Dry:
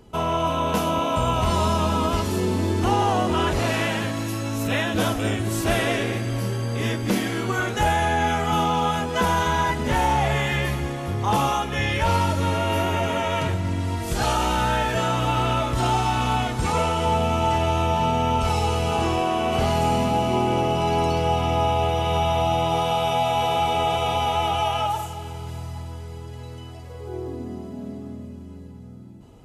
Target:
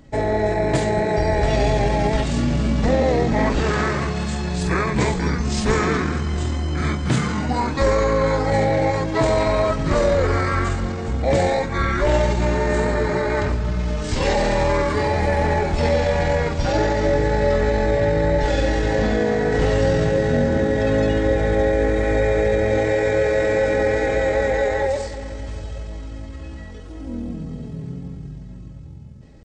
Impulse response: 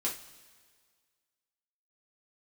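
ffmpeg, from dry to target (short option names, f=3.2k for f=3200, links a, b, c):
-af "asetrate=28595,aresample=44100,atempo=1.54221,volume=3.5dB"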